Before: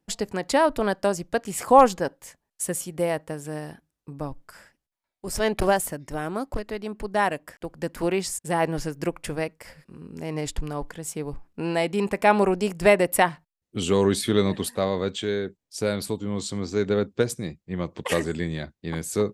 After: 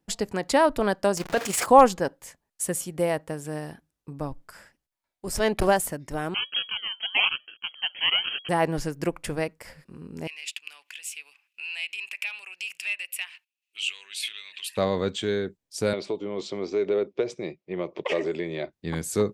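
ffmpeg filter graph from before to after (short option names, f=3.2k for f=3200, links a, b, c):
-filter_complex "[0:a]asettb=1/sr,asplit=3[a][b][c];[a]atrim=end=1.174[d];[b]atrim=start=1.17:end=1.66,asetpts=PTS-STARTPTS,afade=t=in:d=0.004:c=qsin,afade=t=out:st=0.486:d=0.004:c=qsin,aeval=exprs='val(0)+0.5*0.0211*sgn(val(0))':c=same,tremolo=f=24:d=0.621,asplit=2[e][f];[f]highpass=f=720:p=1,volume=16dB,asoftclip=type=tanh:threshold=-13dB[g];[e][g]amix=inputs=2:normalize=0,lowpass=f=6.7k:p=1,volume=-6dB[h];[c]atrim=start=1.656[i];[d][h]acrossfade=d=0.004:c1=hsin:c2=qsin[j];[j][i]acrossfade=d=0.004:c1=qsin:c2=hsin,asettb=1/sr,asplit=3[k][l][m];[k]atrim=end=6.344[n];[l]atrim=start=6.34:end=8.49,asetpts=PTS-STARTPTS,afade=t=in:d=0.004:c=qsin,afade=t=out:st=2.146:d=0.004:c=qsin,acrusher=samples=29:mix=1:aa=0.000001:lfo=1:lforange=17.4:lforate=1.1,lowpass=f=2.8k:t=q:w=0.5098,lowpass=f=2.8k:t=q:w=0.6013,lowpass=f=2.8k:t=q:w=0.9,lowpass=f=2.8k:t=q:w=2.563,afreqshift=-3300[o];[m]atrim=start=8.486[p];[n][o]acrossfade=d=0.004:c1=hsin:c2=qsin[q];[q][p]acrossfade=d=0.004:c1=qsin:c2=hsin,asettb=1/sr,asplit=3[r][s][t];[r]atrim=end=10.274[u];[s]atrim=start=10.27:end=14.77,asetpts=PTS-STARTPTS,afade=t=in:d=0.004:c=qsin,afade=t=out:st=4.496:d=0.004:c=qsin,asoftclip=type=hard:threshold=-8dB,acompressor=threshold=-31dB:ratio=4:attack=3.2:release=140:knee=1:detection=peak,highpass=f=2.6k:t=q:w=8.8[v];[t]atrim=start=14.766[w];[u][v]acrossfade=d=0.004:c1=hsin:c2=qsin[x];[x][w]acrossfade=d=0.004:c1=qsin:c2=hsin,asettb=1/sr,asplit=3[y][z][aa];[y]atrim=end=15.934[ab];[z]atrim=start=15.93:end=18.73,asetpts=PTS-STARTPTS,afade=t=in:d=0.004:c=qsin,afade=t=out:st=2.796:d=0.004:c=qsin,acompressor=threshold=-25dB:ratio=3:attack=3.2:release=140:knee=1:detection=peak,highpass=230,equalizer=f=230:t=q:w=4:g=-7,equalizer=f=380:t=q:w=4:g=9,equalizer=f=610:t=q:w=4:g=8,equalizer=f=1.6k:t=q:w=4:g=-6,equalizer=f=2.3k:t=q:w=4:g=6,equalizer=f=4.3k:t=q:w=4:g=-5,lowpass=f=5.2k:w=0.5412,lowpass=f=5.2k:w=1.3066[ac];[aa]atrim=start=18.726[ad];[ab][ac]acrossfade=d=0.004:c1=hsin:c2=qsin[ae];[ae][ad]acrossfade=d=0.004:c1=qsin:c2=hsin"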